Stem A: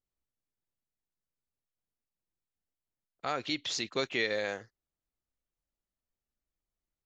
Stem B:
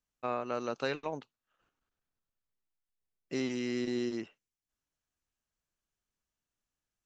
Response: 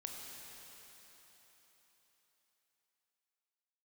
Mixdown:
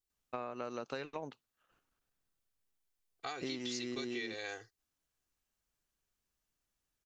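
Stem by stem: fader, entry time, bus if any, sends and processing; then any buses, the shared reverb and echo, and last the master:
-7.5 dB, 0.00 s, no send, high shelf 2600 Hz +9.5 dB; comb 2.6 ms, depth 87%
+1.5 dB, 0.10 s, no send, dry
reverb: off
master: compressor 6:1, threshold -37 dBFS, peak gain reduction 11.5 dB

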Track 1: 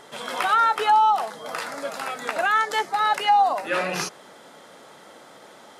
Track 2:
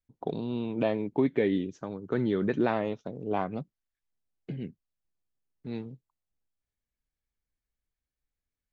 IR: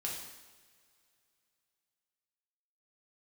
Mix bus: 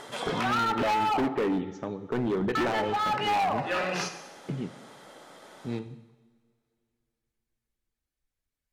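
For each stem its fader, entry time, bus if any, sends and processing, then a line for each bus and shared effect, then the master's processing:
+2.5 dB, 0.00 s, muted 1.28–2.55, send -13.5 dB, auto duck -9 dB, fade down 0.35 s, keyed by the second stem
+1.5 dB, 0.00 s, send -8.5 dB, reverb removal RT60 0.5 s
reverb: on, pre-delay 3 ms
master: treble ducked by the level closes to 2500 Hz, closed at -19.5 dBFS; hard clip -23.5 dBFS, distortion -7 dB

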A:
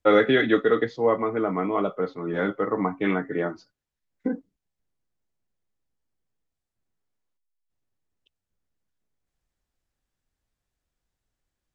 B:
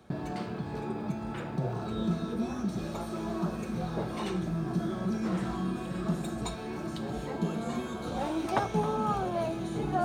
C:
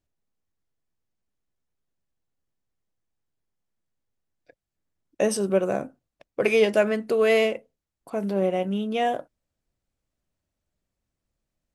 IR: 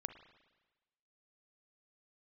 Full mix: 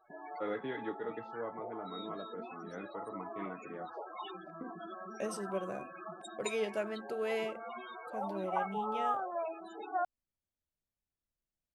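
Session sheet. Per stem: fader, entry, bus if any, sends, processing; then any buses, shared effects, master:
-19.5 dB, 0.35 s, no send, high shelf 4200 Hz -11.5 dB
+1.0 dB, 0.00 s, no send, Bessel high-pass 950 Hz, order 2; loudest bins only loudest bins 16
-15.5 dB, 0.00 s, no send, dry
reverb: off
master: dry

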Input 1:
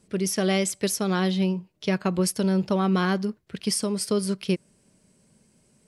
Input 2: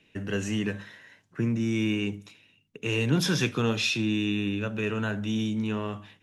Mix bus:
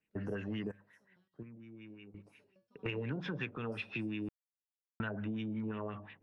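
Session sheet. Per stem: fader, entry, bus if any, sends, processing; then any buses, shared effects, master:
-20.0 dB, 0.00 s, no send, tremolo 5.1 Hz, depth 59%; stepped resonator 8.6 Hz 68–410 Hz
0.0 dB, 0.00 s, no send, Bessel low-pass 6400 Hz; gate with hold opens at -48 dBFS; LFO low-pass sine 5.6 Hz 570–2600 Hz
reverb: off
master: high shelf 7200 Hz -5 dB; random-step tremolo 1.4 Hz, depth 100%; compressor 12:1, threshold -35 dBFS, peak gain reduction 17.5 dB

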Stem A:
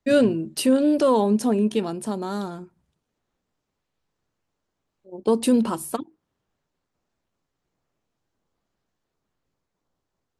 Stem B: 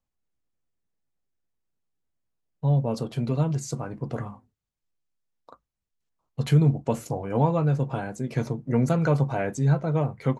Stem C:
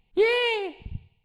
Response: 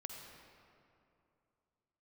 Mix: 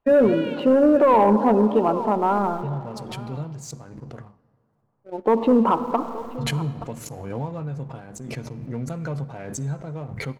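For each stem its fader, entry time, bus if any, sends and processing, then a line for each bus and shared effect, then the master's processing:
-3.0 dB, 0.00 s, bus A, send -6 dB, echo send -20 dB, spectral gate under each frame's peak -30 dB strong; LPF 2600 Hz 24 dB/oct; bell 910 Hz +13 dB 1.7 oct
-15.5 dB, 0.00 s, no bus, send -9 dB, no echo send, low shelf 82 Hz +9 dB; backwards sustainer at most 38 dB/s
-16.0 dB, 0.00 s, bus A, no send, no echo send, dry
bus A: 0.0 dB, rippled Chebyshev low-pass 4500 Hz, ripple 3 dB; limiter -14.5 dBFS, peak gain reduction 9.5 dB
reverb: on, RT60 2.7 s, pre-delay 45 ms
echo: echo 0.875 s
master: sample leveller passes 1

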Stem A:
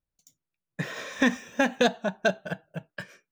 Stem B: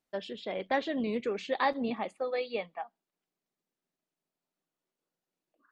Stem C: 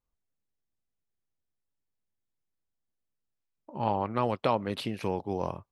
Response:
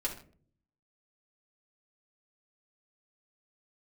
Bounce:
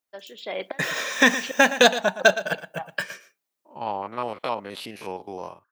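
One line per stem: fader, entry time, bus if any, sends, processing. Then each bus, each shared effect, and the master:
-1.5 dB, 0.00 s, no send, echo send -13.5 dB, dry
-3.0 dB, 0.00 s, send -22.5 dB, no echo send, flipped gate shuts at -24 dBFS, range -27 dB; auto duck -10 dB, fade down 1.80 s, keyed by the third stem
-10.5 dB, 0.00 s, no send, no echo send, stepped spectrum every 50 ms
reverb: on, RT60 0.50 s, pre-delay 3 ms
echo: echo 0.116 s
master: HPF 670 Hz 6 dB/oct; AGC gain up to 14 dB; high shelf 9300 Hz +8 dB

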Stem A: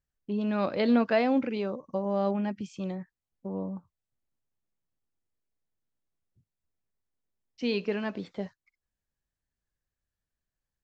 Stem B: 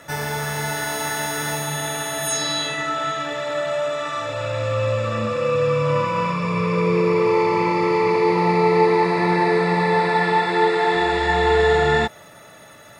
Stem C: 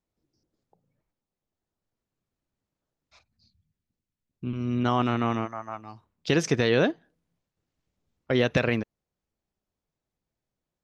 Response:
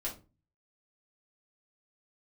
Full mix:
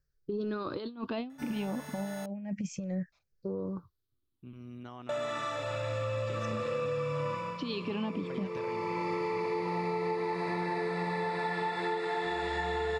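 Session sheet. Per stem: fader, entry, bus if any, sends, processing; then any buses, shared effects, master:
-1.5 dB, 0.00 s, bus A, no send, moving spectral ripple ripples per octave 0.57, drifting -0.3 Hz, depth 15 dB; low shelf 350 Hz +4 dB; rotary speaker horn 1 Hz
-8.0 dB, 1.30 s, muted 2.26–5.09, no bus, no send, auto duck -12 dB, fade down 0.25 s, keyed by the first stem
-20.0 dB, 0.00 s, bus A, no send, gate with hold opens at -55 dBFS; compressor, threshold -25 dBFS, peak gain reduction 8 dB
bus A: 0.0 dB, negative-ratio compressor -31 dBFS, ratio -0.5; limiter -24.5 dBFS, peak gain reduction 8.5 dB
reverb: off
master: compressor 5:1, threshold -30 dBFS, peak gain reduction 10 dB

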